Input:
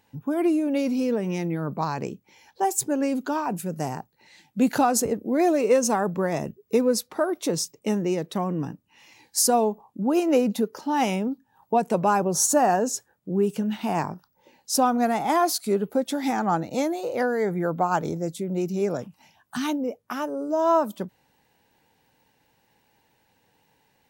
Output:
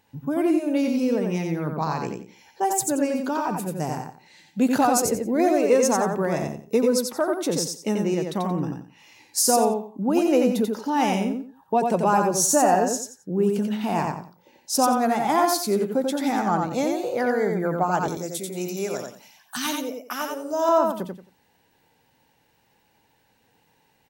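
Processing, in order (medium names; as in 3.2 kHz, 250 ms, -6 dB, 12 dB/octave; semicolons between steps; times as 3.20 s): 18.08–20.69 s: tilt EQ +3 dB/octave; feedback delay 89 ms, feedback 24%, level -4 dB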